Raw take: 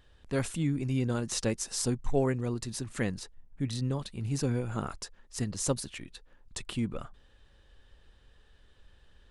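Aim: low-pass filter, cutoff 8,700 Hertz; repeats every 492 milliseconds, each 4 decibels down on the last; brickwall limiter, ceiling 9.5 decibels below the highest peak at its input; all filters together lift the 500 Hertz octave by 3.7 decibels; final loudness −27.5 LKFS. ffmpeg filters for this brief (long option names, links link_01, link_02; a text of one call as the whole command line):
ffmpeg -i in.wav -af "lowpass=8700,equalizer=frequency=500:width_type=o:gain=4.5,alimiter=limit=-23.5dB:level=0:latency=1,aecho=1:1:492|984|1476|1968|2460|2952|3444|3936|4428:0.631|0.398|0.25|0.158|0.0994|0.0626|0.0394|0.0249|0.0157,volume=6dB" out.wav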